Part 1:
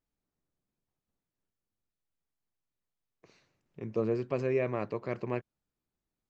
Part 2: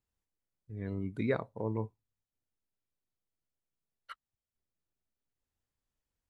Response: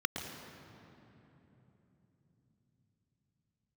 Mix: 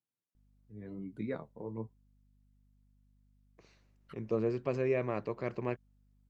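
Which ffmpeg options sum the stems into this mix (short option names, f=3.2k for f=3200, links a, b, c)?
-filter_complex "[0:a]aeval=exprs='val(0)+0.000562*(sin(2*PI*50*n/s)+sin(2*PI*2*50*n/s)/2+sin(2*PI*3*50*n/s)/3+sin(2*PI*4*50*n/s)/4+sin(2*PI*5*50*n/s)/5)':c=same,adelay=350,volume=-1.5dB[a];[1:a]highpass=f=130:w=0.5412,highpass=f=130:w=1.3066,lowshelf=f=450:g=7.5,flanger=delay=5.5:depth=8.9:regen=39:speed=1:shape=triangular,volume=-6.5dB[b];[a][b]amix=inputs=2:normalize=0"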